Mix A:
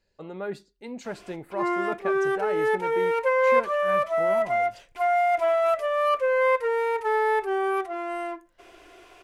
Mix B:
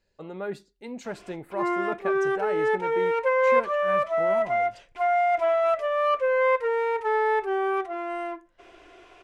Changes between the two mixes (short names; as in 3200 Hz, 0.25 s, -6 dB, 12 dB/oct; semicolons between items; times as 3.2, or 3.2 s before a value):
background: add air absorption 69 m; master: add bell 4600 Hz -2.5 dB 0.2 oct